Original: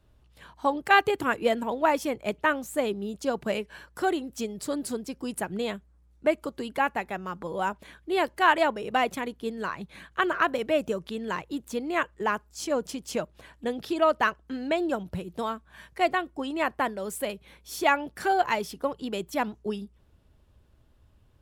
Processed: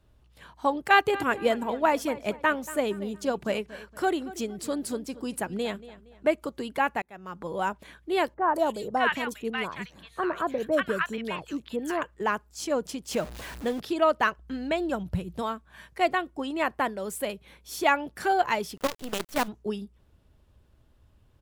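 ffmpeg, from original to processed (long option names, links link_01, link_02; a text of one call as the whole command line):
ffmpeg -i in.wav -filter_complex "[0:a]asplit=3[link_01][link_02][link_03];[link_01]afade=type=out:start_time=1.05:duration=0.02[link_04];[link_02]asplit=2[link_05][link_06];[link_06]adelay=233,lowpass=frequency=4700:poles=1,volume=-16.5dB,asplit=2[link_07][link_08];[link_08]adelay=233,lowpass=frequency=4700:poles=1,volume=0.38,asplit=2[link_09][link_10];[link_10]adelay=233,lowpass=frequency=4700:poles=1,volume=0.38[link_11];[link_05][link_07][link_09][link_11]amix=inputs=4:normalize=0,afade=type=in:start_time=1.05:duration=0.02,afade=type=out:start_time=6.34:duration=0.02[link_12];[link_03]afade=type=in:start_time=6.34:duration=0.02[link_13];[link_04][link_12][link_13]amix=inputs=3:normalize=0,asettb=1/sr,asplit=3[link_14][link_15][link_16];[link_14]atrim=end=8.344[link_17];[link_15]atrim=start=8.34:end=12.02,asetpts=PTS-STARTPTS,afade=type=in:duration=0.004:curve=qsin,afade=type=out:start_time=3.676:duration=0.004:curve=qsin,acrossover=split=1200|4000[link_18][link_19][link_20];[link_20]adelay=180[link_21];[link_19]adelay=590[link_22];[link_18][link_22][link_21]amix=inputs=3:normalize=0,atrim=end_sample=162288[link_23];[link_16]atrim=start=12.016[link_24];[link_17][link_23]acrossfade=duration=0.004:curve1=hsin:curve2=qsin[link_25];[link_25][link_24]acrossfade=duration=0.004:curve1=qsin:curve2=hsin,asettb=1/sr,asplit=3[link_26][link_27][link_28];[link_26]atrim=end=13.114[link_29];[link_27]atrim=start=13.11:end=13.8,asetpts=PTS-STARTPTS,afade=type=in:duration=0.004:curve=qsin,afade=type=out:start_time=0.686:duration=0.004:curve=qsin,aeval=exprs='val(0)+0.5*0.0158*sgn(val(0))':channel_layout=same[link_30];[link_28]atrim=start=13.796[link_31];[link_29][link_30]acrossfade=duration=0.004:curve1=hsin:curve2=qsin[link_32];[link_32][link_31]acrossfade=duration=0.004:curve1=qsin:curve2=hsin,asplit=3[link_33][link_34][link_35];[link_33]afade=type=out:start_time=14.37:duration=0.02[link_36];[link_34]asubboost=boost=2.5:cutoff=180,afade=type=in:start_time=14.37:duration=0.02,afade=type=out:start_time=15.41:duration=0.02[link_37];[link_35]afade=type=in:start_time=15.41:duration=0.02[link_38];[link_36][link_37][link_38]amix=inputs=3:normalize=0,asplit=3[link_39][link_40][link_41];[link_39]afade=type=out:start_time=18.76:duration=0.02[link_42];[link_40]acrusher=bits=5:dc=4:mix=0:aa=0.000001,afade=type=in:start_time=18.76:duration=0.02,afade=type=out:start_time=19.47:duration=0.02[link_43];[link_41]afade=type=in:start_time=19.47:duration=0.02[link_44];[link_42][link_43][link_44]amix=inputs=3:normalize=0,asplit=2[link_45][link_46];[link_45]atrim=end=7.02,asetpts=PTS-STARTPTS,afade=type=out:start_time=7.016:duration=0.004:curve=hsin[link_47];[link_46]atrim=start=7.02,asetpts=PTS-STARTPTS,afade=type=in:duration=0.46[link_48];[link_47][link_48]concat=n=2:v=0:a=1" out.wav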